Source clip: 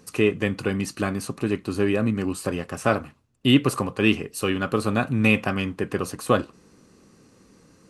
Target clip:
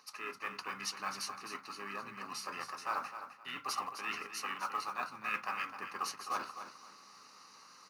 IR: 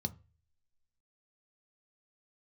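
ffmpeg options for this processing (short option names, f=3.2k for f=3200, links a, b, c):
-filter_complex "[0:a]areverse,acompressor=threshold=-32dB:ratio=12,areverse,aeval=exprs='val(0)+0.000794*(sin(2*PI*60*n/s)+sin(2*PI*2*60*n/s)/2+sin(2*PI*3*60*n/s)/3+sin(2*PI*4*60*n/s)/4+sin(2*PI*5*60*n/s)/5)':c=same,asplit=3[a][b][c];[b]asetrate=22050,aresample=44100,atempo=2,volume=-10dB[d];[c]asetrate=29433,aresample=44100,atempo=1.49831,volume=-4dB[e];[a][d][e]amix=inputs=3:normalize=0,highpass=f=1.3k:t=q:w=4.1,aecho=1:1:259|518|777:0.316|0.0791|0.0198[f];[1:a]atrim=start_sample=2205,asetrate=48510,aresample=44100[g];[f][g]afir=irnorm=-1:irlink=0,acrusher=bits=7:mode=log:mix=0:aa=0.000001"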